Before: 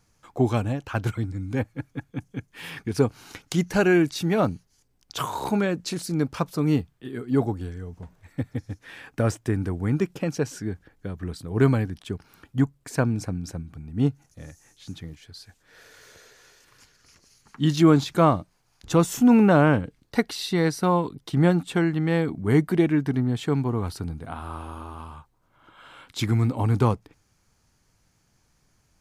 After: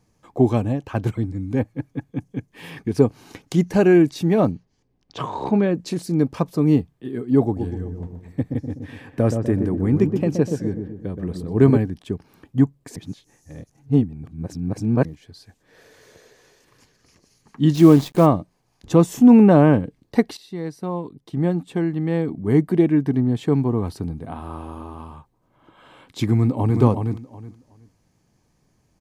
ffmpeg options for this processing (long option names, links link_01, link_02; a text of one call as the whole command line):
ffmpeg -i in.wav -filter_complex "[0:a]asettb=1/sr,asplit=3[link_01][link_02][link_03];[link_01]atrim=end=4.514[link_04];[link_02]atrim=start=4.51:end=5.75,asetpts=PTS-STARTPTS,afade=type=in:duration=0.004:curve=qsin,afade=type=out:start_time=1.236:duration=0.004:curve=qsin,lowpass=4200[link_05];[link_03]atrim=start=5.746[link_06];[link_04][link_05]acrossfade=duration=0.004:curve1=hsin:curve2=qsin[link_07];[link_07][link_06]acrossfade=duration=0.004:curve1=qsin:curve2=hsin,asettb=1/sr,asplit=3[link_08][link_09][link_10];[link_08]atrim=end=7.444[link_11];[link_09]atrim=start=7.44:end=11.77,asetpts=PTS-STARTPTS,afade=type=in:duration=0.004:curve=qsin,afade=type=out:start_time=4.326:duration=0.004:curve=qsin,asplit=2[link_12][link_13];[link_13]adelay=124,lowpass=frequency=930:poles=1,volume=-5dB,asplit=2[link_14][link_15];[link_15]adelay=124,lowpass=frequency=930:poles=1,volume=0.53,asplit=2[link_16][link_17];[link_17]adelay=124,lowpass=frequency=930:poles=1,volume=0.53,asplit=2[link_18][link_19];[link_19]adelay=124,lowpass=frequency=930:poles=1,volume=0.53,asplit=2[link_20][link_21];[link_21]adelay=124,lowpass=frequency=930:poles=1,volume=0.53,asplit=2[link_22][link_23];[link_23]adelay=124,lowpass=frequency=930:poles=1,volume=0.53,asplit=2[link_24][link_25];[link_25]adelay=124,lowpass=frequency=930:poles=1,volume=0.53[link_26];[link_12][link_14][link_16][link_18][link_20][link_22][link_24][link_26]amix=inputs=8:normalize=0,atrim=end_sample=190953[link_27];[link_10]atrim=start=11.766[link_28];[link_11][link_27]acrossfade=duration=0.004:curve1=hsin:curve2=qsin[link_29];[link_29][link_28]acrossfade=duration=0.004:curve1=qsin:curve2=hsin,asplit=3[link_30][link_31][link_32];[link_30]afade=type=out:start_time=17.74:duration=0.02[link_33];[link_31]acrusher=bits=6:dc=4:mix=0:aa=0.000001,afade=type=in:start_time=17.74:duration=0.02,afade=type=out:start_time=18.25:duration=0.02[link_34];[link_32]afade=type=in:start_time=18.25:duration=0.02[link_35];[link_33][link_34][link_35]amix=inputs=3:normalize=0,asplit=2[link_36][link_37];[link_37]afade=type=in:start_time=26.33:duration=0.01,afade=type=out:start_time=26.8:duration=0.01,aecho=0:1:370|740|1110:0.562341|0.112468|0.0224937[link_38];[link_36][link_38]amix=inputs=2:normalize=0,asplit=4[link_39][link_40][link_41][link_42];[link_39]atrim=end=12.962[link_43];[link_40]atrim=start=12.958:end=15.052,asetpts=PTS-STARTPTS,areverse[link_44];[link_41]atrim=start=15.048:end=20.37,asetpts=PTS-STARTPTS,afade=type=out:start_time=5.318:duration=0.004:curve=hsin:silence=0.188365[link_45];[link_42]atrim=start=20.37,asetpts=PTS-STARTPTS,afade=type=in:duration=3.18:silence=0.188365[link_46];[link_43][link_44]acrossfade=duration=0.004:curve1=hsin:curve2=hsin[link_47];[link_45][link_46]concat=n=2:v=0:a=1[link_48];[link_47][link_48]acrossfade=duration=0.004:curve1=hsin:curve2=hsin,equalizer=frequency=280:width=0.32:gain=9.5,bandreject=frequency=1400:width=6.9,volume=-3.5dB" out.wav